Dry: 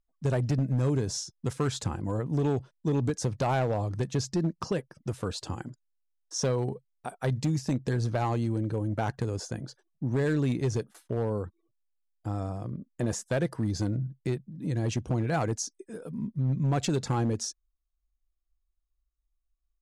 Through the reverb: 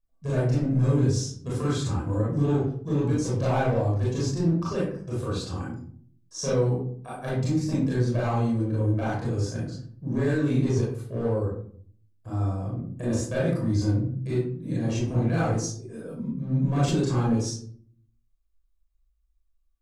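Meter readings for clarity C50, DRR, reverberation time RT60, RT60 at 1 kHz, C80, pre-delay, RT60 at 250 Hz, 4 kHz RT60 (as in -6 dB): 0.0 dB, -8.0 dB, 0.55 s, 0.50 s, 6.5 dB, 25 ms, 0.75 s, 0.30 s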